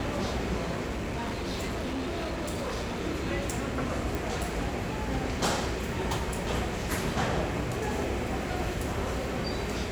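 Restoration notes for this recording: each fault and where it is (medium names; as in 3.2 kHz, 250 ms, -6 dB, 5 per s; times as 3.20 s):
0.92–3.01 s: clipped -29 dBFS
4.15 s: pop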